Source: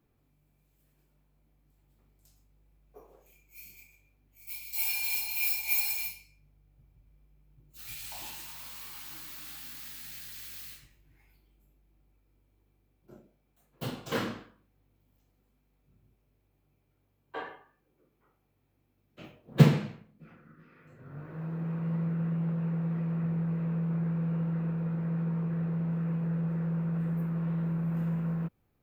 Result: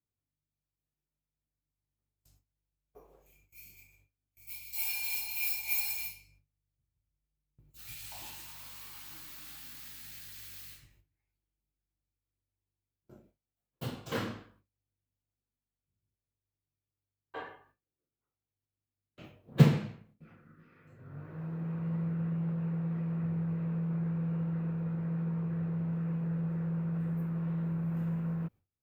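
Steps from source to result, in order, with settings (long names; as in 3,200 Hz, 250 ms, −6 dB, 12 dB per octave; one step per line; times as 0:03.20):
noise gate with hold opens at −52 dBFS
parametric band 92 Hz +9 dB 0.6 octaves
level −3.5 dB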